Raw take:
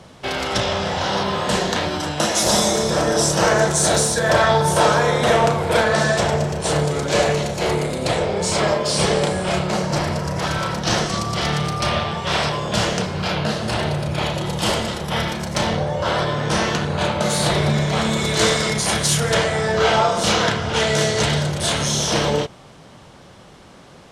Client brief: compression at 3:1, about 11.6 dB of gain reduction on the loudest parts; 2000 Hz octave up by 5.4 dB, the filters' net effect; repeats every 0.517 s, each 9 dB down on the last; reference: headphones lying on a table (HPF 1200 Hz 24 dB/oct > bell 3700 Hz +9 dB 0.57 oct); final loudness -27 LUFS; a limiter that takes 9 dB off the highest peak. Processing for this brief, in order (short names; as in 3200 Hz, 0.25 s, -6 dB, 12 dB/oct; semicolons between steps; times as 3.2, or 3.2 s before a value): bell 2000 Hz +6 dB; compressor 3:1, threshold -27 dBFS; limiter -21 dBFS; HPF 1200 Hz 24 dB/oct; bell 3700 Hz +9 dB 0.57 oct; feedback echo 0.517 s, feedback 35%, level -9 dB; gain +2 dB